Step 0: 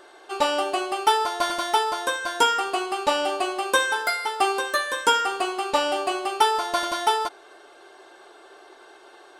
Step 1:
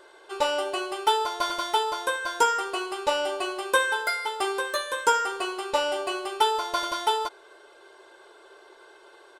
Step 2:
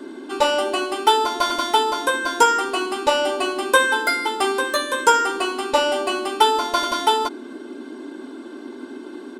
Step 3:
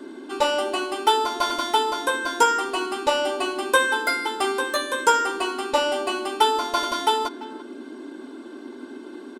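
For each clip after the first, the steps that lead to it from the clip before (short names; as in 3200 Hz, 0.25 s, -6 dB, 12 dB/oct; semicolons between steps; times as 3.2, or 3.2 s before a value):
comb 2 ms, depth 53%; gain -4 dB
band noise 240–390 Hz -42 dBFS; gain +6.5 dB
speakerphone echo 0.34 s, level -17 dB; gain -3 dB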